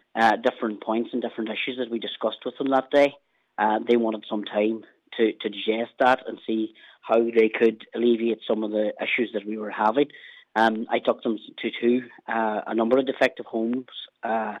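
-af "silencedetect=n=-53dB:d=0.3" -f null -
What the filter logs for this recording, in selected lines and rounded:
silence_start: 3.18
silence_end: 3.58 | silence_duration: 0.40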